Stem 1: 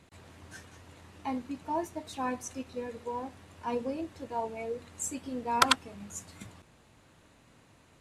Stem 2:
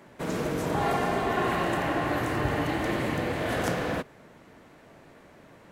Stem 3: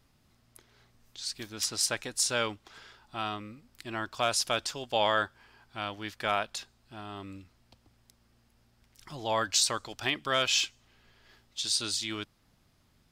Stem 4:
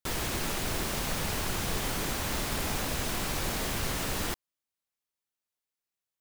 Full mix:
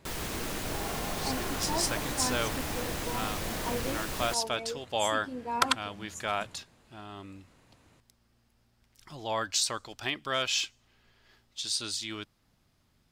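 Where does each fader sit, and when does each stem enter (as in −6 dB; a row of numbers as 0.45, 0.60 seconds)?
−2.5, −12.5, −2.5, −4.0 decibels; 0.00, 0.00, 0.00, 0.00 seconds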